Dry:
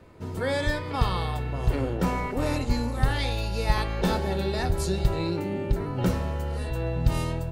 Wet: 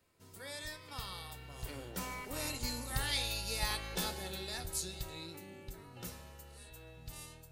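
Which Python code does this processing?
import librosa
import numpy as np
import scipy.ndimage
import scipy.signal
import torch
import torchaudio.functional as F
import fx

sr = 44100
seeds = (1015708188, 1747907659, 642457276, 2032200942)

y = fx.doppler_pass(x, sr, speed_mps=10, closest_m=9.8, pass_at_s=3.23)
y = librosa.effects.preemphasis(y, coef=0.9, zi=[0.0])
y = y * 10.0 ** (5.0 / 20.0)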